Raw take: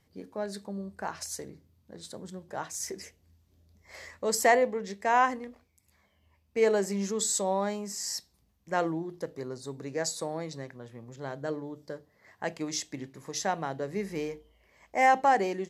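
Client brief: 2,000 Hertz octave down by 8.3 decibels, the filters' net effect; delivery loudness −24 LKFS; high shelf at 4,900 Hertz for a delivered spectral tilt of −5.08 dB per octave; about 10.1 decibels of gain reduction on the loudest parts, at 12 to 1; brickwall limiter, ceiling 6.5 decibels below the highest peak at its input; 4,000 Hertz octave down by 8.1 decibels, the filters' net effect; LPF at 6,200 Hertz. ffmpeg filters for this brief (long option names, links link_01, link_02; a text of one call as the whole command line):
ffmpeg -i in.wav -af "lowpass=6200,equalizer=frequency=2000:width_type=o:gain=-8.5,equalizer=frequency=4000:width_type=o:gain=-3.5,highshelf=frequency=4900:gain=-6.5,acompressor=threshold=-29dB:ratio=12,volume=15dB,alimiter=limit=-11.5dB:level=0:latency=1" out.wav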